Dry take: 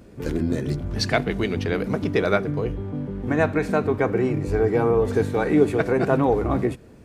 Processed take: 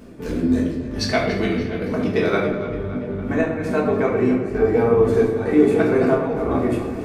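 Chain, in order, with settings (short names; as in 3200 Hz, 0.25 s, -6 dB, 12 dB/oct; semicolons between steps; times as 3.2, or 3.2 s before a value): low shelf 130 Hz -4.5 dB; reverse; upward compressor, threshold -26 dBFS; reverse; chopper 1.1 Hz, depth 65%, duty 75%; tape echo 0.283 s, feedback 69%, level -11 dB, low-pass 3700 Hz; reverb RT60 0.75 s, pre-delay 5 ms, DRR -3.5 dB; gain -3 dB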